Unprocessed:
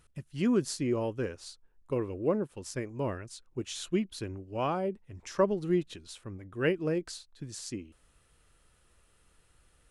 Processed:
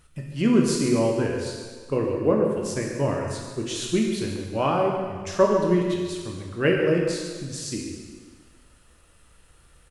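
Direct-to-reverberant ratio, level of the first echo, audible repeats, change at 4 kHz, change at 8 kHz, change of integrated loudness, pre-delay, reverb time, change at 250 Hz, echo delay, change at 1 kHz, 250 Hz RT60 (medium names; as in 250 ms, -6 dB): -1.0 dB, -10.5 dB, 1, +9.0 dB, +9.0 dB, +8.5 dB, 12 ms, 1.6 s, +8.5 dB, 140 ms, +9.0 dB, 1.5 s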